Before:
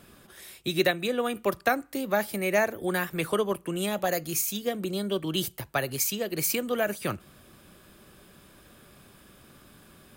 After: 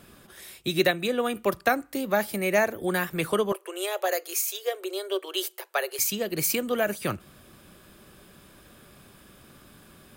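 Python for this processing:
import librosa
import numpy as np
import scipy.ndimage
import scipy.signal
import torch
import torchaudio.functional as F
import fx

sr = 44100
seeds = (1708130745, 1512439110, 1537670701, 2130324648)

y = fx.cheby1_highpass(x, sr, hz=370.0, order=6, at=(3.52, 5.99))
y = y * 10.0 ** (1.5 / 20.0)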